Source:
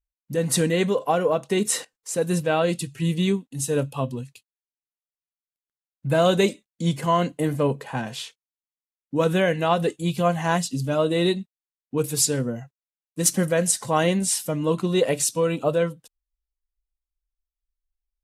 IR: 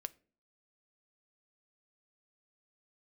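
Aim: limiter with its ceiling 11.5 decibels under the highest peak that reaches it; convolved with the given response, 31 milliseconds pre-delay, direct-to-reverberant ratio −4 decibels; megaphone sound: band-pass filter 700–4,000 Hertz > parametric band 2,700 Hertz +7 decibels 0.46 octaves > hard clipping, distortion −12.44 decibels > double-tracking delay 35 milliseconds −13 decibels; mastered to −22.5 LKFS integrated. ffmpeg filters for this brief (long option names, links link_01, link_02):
-filter_complex "[0:a]alimiter=limit=-16.5dB:level=0:latency=1,asplit=2[link_01][link_02];[1:a]atrim=start_sample=2205,adelay=31[link_03];[link_02][link_03]afir=irnorm=-1:irlink=0,volume=7dB[link_04];[link_01][link_04]amix=inputs=2:normalize=0,highpass=700,lowpass=4000,equalizer=frequency=2700:width_type=o:width=0.46:gain=7,asoftclip=type=hard:threshold=-22dB,asplit=2[link_05][link_06];[link_06]adelay=35,volume=-13dB[link_07];[link_05][link_07]amix=inputs=2:normalize=0,volume=6.5dB"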